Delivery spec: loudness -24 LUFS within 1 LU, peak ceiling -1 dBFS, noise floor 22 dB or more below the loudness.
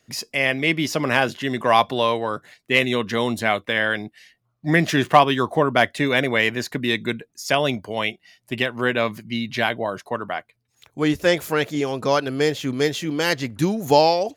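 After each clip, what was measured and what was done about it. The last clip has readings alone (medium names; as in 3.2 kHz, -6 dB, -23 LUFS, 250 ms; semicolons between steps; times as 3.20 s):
loudness -21.5 LUFS; peak level -2.0 dBFS; loudness target -24.0 LUFS
-> trim -2.5 dB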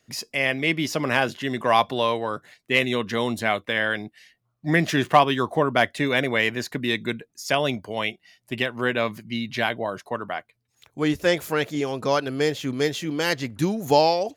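loudness -24.0 LUFS; peak level -4.5 dBFS; noise floor -73 dBFS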